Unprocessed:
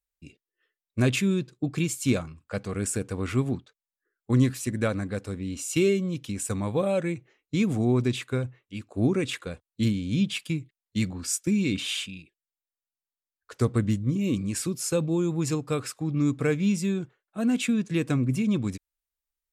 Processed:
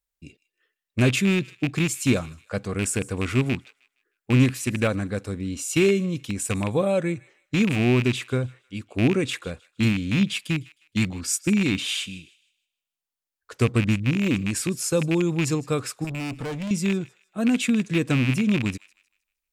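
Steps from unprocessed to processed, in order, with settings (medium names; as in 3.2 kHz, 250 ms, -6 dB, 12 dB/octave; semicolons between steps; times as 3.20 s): rattle on loud lows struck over -25 dBFS, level -20 dBFS; 16.04–16.71 s: valve stage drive 31 dB, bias 0.35; feedback echo behind a high-pass 155 ms, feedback 32%, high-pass 1.5 kHz, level -19.5 dB; trim +3 dB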